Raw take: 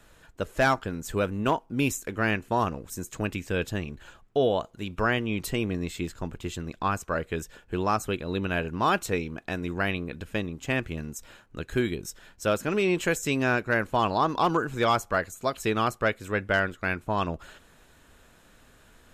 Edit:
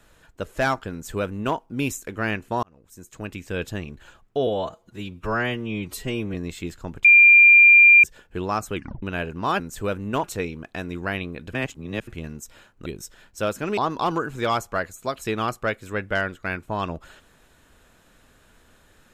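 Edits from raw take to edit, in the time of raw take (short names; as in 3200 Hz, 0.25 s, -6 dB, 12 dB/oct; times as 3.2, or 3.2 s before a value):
0.92–1.56 copy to 8.97
2.63–3.62 fade in
4.47–5.72 stretch 1.5×
6.42–7.41 bleep 2390 Hz -8 dBFS
8.12 tape stop 0.28 s
10.27–10.81 reverse
11.6–11.91 cut
12.82–14.16 cut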